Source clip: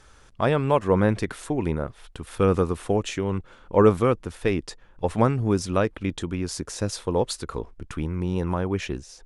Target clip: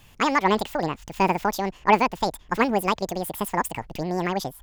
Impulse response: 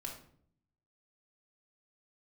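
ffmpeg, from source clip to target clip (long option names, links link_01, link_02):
-af "asetrate=88200,aresample=44100"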